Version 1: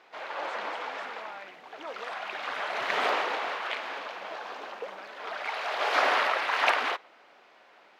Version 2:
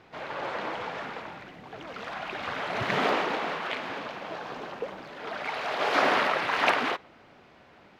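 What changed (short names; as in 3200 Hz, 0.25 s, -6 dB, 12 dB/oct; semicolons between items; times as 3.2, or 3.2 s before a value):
speech -8.0 dB; master: remove HPF 540 Hz 12 dB/oct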